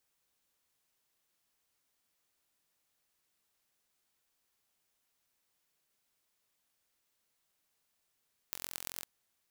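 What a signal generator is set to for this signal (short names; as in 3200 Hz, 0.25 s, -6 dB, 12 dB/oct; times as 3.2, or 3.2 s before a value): pulse train 43.8/s, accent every 5, -9.5 dBFS 0.52 s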